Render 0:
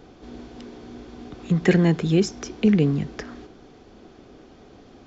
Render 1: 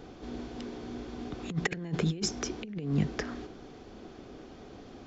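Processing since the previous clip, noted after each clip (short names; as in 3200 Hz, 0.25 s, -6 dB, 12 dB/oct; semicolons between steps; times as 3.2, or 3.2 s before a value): negative-ratio compressor -24 dBFS, ratio -0.5; gain -5.5 dB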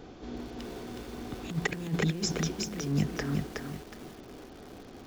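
lo-fi delay 0.368 s, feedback 35%, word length 8-bit, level -3 dB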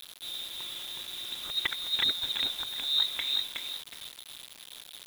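inverted band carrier 3900 Hz; bit-crush 7-bit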